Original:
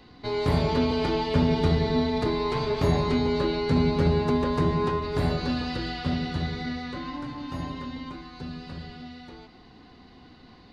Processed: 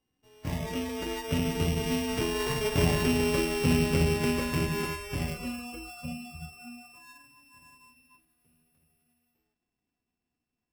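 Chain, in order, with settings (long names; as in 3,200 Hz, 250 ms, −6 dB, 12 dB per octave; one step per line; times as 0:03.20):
samples sorted by size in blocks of 16 samples
source passing by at 0:03.25, 9 m/s, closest 12 metres
noise reduction from a noise print of the clip's start 20 dB
level −1.5 dB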